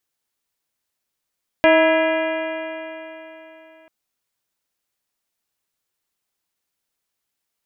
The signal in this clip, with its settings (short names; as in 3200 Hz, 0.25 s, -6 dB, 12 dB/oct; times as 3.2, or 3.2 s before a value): stretched partials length 2.24 s, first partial 318 Hz, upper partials 6/-3/-11/-2.5/-5.5/-5/-10.5/-16 dB, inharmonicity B 0.0034, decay 3.48 s, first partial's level -17 dB